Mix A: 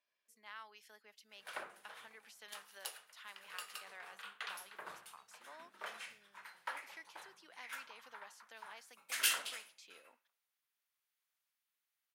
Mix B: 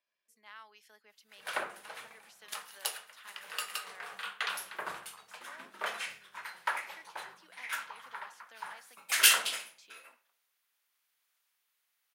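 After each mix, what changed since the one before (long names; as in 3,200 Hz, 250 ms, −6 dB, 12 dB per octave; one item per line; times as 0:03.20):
background +10.5 dB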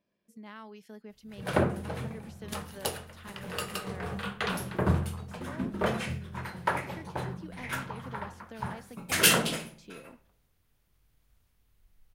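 master: remove high-pass filter 1,200 Hz 12 dB per octave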